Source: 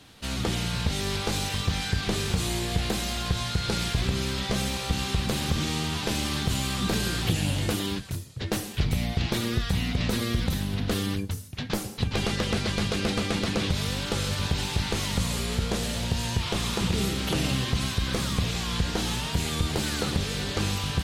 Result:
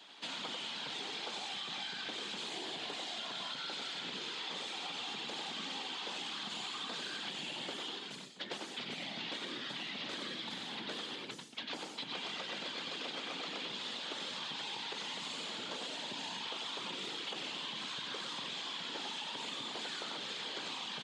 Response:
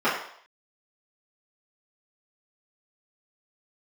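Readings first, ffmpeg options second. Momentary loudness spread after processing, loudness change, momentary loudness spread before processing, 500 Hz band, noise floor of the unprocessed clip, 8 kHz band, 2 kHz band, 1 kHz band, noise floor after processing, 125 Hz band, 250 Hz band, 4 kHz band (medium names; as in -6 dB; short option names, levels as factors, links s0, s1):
2 LU, -12.0 dB, 2 LU, -15.0 dB, -36 dBFS, -16.5 dB, -9.5 dB, -9.5 dB, -47 dBFS, -32.5 dB, -20.0 dB, -7.0 dB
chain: -af "lowshelf=f=450:g=-11.5,aecho=1:1:94:0.596,afftfilt=real='hypot(re,im)*cos(2*PI*random(0))':imag='hypot(re,im)*sin(2*PI*random(1))':win_size=512:overlap=0.75,highpass=f=200:w=0.5412,highpass=f=200:w=1.3066,equalizer=f=900:t=q:w=4:g=5,equalizer=f=3300:t=q:w=4:g=6,equalizer=f=5700:t=q:w=4:g=-6,lowpass=f=6800:w=0.5412,lowpass=f=6800:w=1.3066,acompressor=threshold=0.00794:ratio=6,volume=1.41"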